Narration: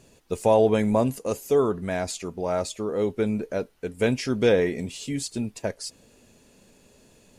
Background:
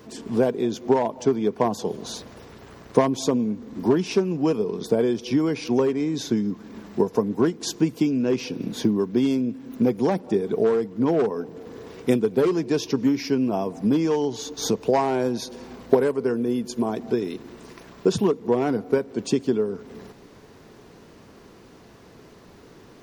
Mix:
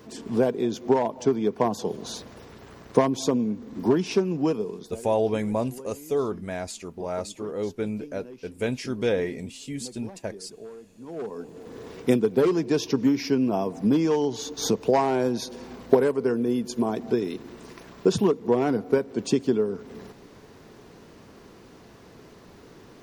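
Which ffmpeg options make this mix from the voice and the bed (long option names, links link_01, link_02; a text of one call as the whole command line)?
ffmpeg -i stem1.wav -i stem2.wav -filter_complex "[0:a]adelay=4600,volume=-4.5dB[link_01];[1:a]volume=19.5dB,afade=type=out:start_time=4.42:duration=0.59:silence=0.1,afade=type=in:start_time=11.06:duration=0.77:silence=0.0891251[link_02];[link_01][link_02]amix=inputs=2:normalize=0" out.wav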